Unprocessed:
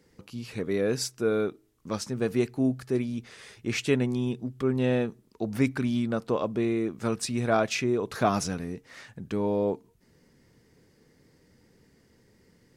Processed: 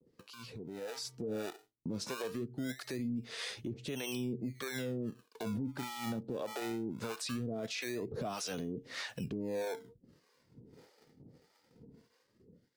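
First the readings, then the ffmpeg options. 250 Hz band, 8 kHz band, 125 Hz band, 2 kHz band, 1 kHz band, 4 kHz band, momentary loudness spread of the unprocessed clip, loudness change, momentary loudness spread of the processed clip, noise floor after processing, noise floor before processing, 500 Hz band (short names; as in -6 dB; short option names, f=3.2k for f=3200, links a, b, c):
-11.0 dB, -7.5 dB, -11.5 dB, -8.5 dB, -12.0 dB, -4.5 dB, 12 LU, -11.0 dB, 7 LU, -73 dBFS, -64 dBFS, -12.5 dB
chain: -filter_complex "[0:a]equalizer=f=125:t=o:w=1:g=6,equalizer=f=250:t=o:w=1:g=5,equalizer=f=500:t=o:w=1:g=6,equalizer=f=4k:t=o:w=1:g=8,acrossover=split=340|1100[a][b][c];[a]acrusher=samples=28:mix=1:aa=0.000001:lfo=1:lforange=28:lforate=0.2[d];[b]aphaser=in_gain=1:out_gain=1:delay=4.5:decay=0.53:speed=0.46:type=sinusoidal[e];[d][e][c]amix=inputs=3:normalize=0,acrossover=split=500[f][g];[f]aeval=exprs='val(0)*(1-1/2+1/2*cos(2*PI*1.6*n/s))':c=same[h];[g]aeval=exprs='val(0)*(1-1/2-1/2*cos(2*PI*1.6*n/s))':c=same[i];[h][i]amix=inputs=2:normalize=0,lowshelf=f=110:g=-4,acompressor=threshold=-32dB:ratio=10,alimiter=level_in=10dB:limit=-24dB:level=0:latency=1:release=30,volume=-10dB,agate=range=-33dB:threshold=-54dB:ratio=3:detection=peak,dynaudnorm=f=370:g=5:m=10dB,volume=-6dB"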